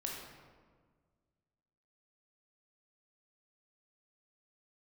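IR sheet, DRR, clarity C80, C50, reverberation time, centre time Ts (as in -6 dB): -2.0 dB, 3.5 dB, 1.0 dB, 1.6 s, 71 ms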